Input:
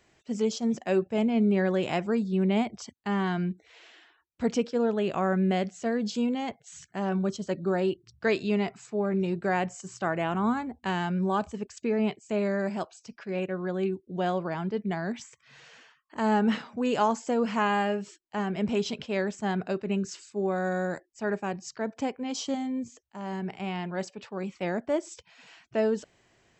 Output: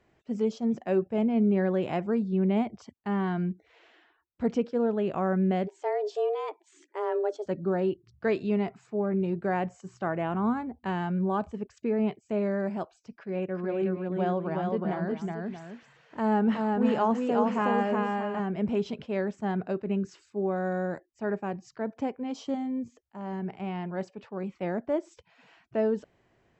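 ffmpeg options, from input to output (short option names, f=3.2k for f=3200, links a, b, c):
-filter_complex "[0:a]asplit=3[a][b][c];[a]afade=t=out:st=5.66:d=0.02[d];[b]afreqshift=210,afade=t=in:st=5.66:d=0.02,afade=t=out:st=7.45:d=0.02[e];[c]afade=t=in:st=7.45:d=0.02[f];[d][e][f]amix=inputs=3:normalize=0,asettb=1/sr,asplit=3[g][h][i];[g]atrim=end=13.134[j];[h]atrim=start=13.13:end=18.4,asetpts=PTS-STARTPTS,afade=t=in:d=0.004:c=qsin,afade=t=out:st=5.266:d=0.004:c=qsin,aecho=1:1:368|630:0.708|0.282,atrim=end_sample=232407[k];[i]atrim=start=18.396[l];[j][k]acrossfade=d=0.004:c1=hsin:c2=qsin[m];[m][l]acrossfade=d=0.004:c1=qsin:c2=hsin,lowpass=f=1.2k:p=1"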